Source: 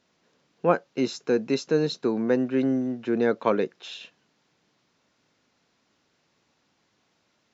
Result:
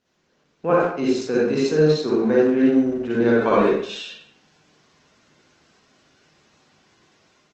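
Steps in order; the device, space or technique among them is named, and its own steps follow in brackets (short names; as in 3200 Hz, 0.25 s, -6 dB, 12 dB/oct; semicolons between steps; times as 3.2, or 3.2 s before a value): speakerphone in a meeting room (reverb RT60 0.55 s, pre-delay 46 ms, DRR -6.5 dB; speakerphone echo 90 ms, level -10 dB; AGC gain up to 8 dB; gain -4.5 dB; Opus 16 kbps 48000 Hz)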